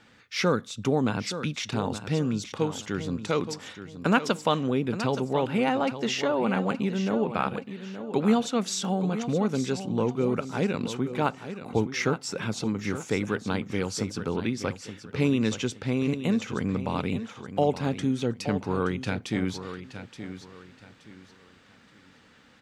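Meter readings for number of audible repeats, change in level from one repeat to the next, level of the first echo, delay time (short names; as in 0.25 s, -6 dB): 3, -10.5 dB, -11.0 dB, 0.873 s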